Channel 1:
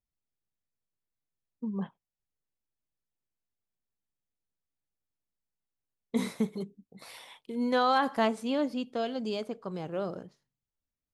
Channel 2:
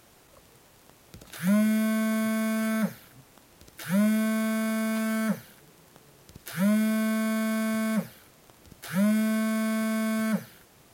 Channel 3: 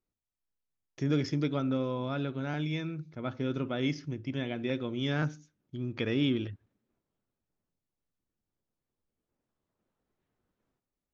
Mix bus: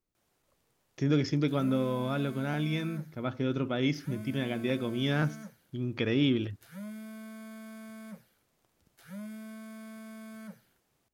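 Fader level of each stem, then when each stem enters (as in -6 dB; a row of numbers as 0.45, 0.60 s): off, -18.5 dB, +2.0 dB; off, 0.15 s, 0.00 s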